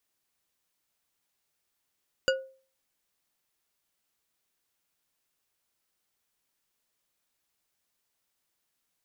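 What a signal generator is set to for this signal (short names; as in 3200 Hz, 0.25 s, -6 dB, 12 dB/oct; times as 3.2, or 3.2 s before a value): glass hit bar, lowest mode 530 Hz, decay 0.41 s, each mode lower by 2.5 dB, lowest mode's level -20 dB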